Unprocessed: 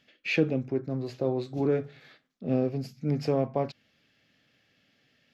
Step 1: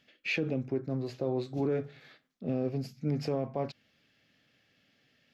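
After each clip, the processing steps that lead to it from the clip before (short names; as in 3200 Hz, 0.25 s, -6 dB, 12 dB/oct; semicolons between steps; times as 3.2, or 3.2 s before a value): limiter -20.5 dBFS, peak gain reduction 8 dB; gain -1.5 dB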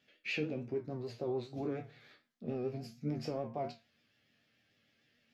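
resonator bank D#2 major, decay 0.26 s; vibrato 6.8 Hz 64 cents; gain +6 dB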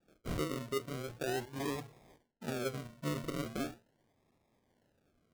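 decimation with a swept rate 42×, swing 60% 0.4 Hz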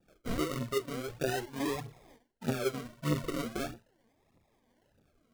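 phaser 1.6 Hz, delay 4.6 ms, feedback 57%; gain +2 dB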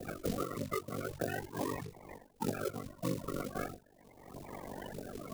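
bin magnitudes rounded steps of 30 dB; ring modulator 24 Hz; three-band squash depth 100%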